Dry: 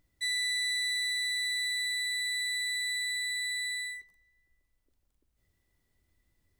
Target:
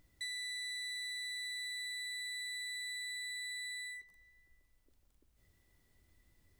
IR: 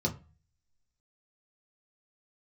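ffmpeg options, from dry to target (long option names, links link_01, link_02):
-af "acompressor=threshold=-51dB:ratio=2.5,volume=4dB"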